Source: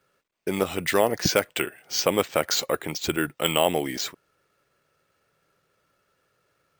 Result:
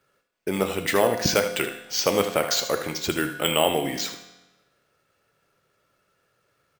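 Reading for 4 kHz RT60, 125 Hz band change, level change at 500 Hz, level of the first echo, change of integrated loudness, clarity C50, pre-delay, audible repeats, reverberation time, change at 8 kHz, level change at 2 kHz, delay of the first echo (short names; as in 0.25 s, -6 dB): 1.0 s, +0.5 dB, +1.0 dB, -11.0 dB, +1.0 dB, 7.5 dB, 4 ms, 1, 1.1 s, +1.0 dB, +1.0 dB, 77 ms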